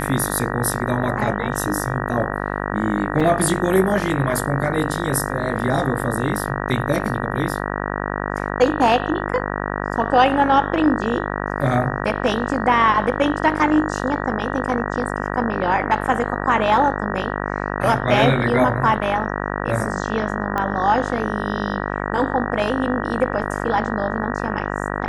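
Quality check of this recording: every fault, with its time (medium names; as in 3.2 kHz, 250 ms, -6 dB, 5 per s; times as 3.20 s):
buzz 50 Hz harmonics 38 -25 dBFS
3.20–3.21 s: dropout 5 ms
20.58 s: pop -10 dBFS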